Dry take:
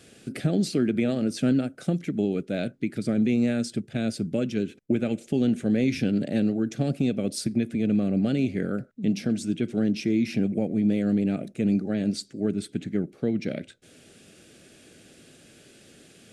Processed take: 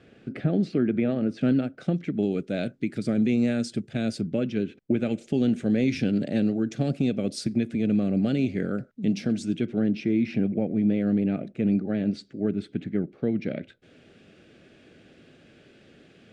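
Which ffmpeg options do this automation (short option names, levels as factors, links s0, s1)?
-af "asetnsamples=n=441:p=0,asendcmd='1.41 lowpass f 3700;2.23 lowpass f 7800;4.21 lowpass f 3700;4.98 lowpass f 6700;9.65 lowpass f 2900',lowpass=2200"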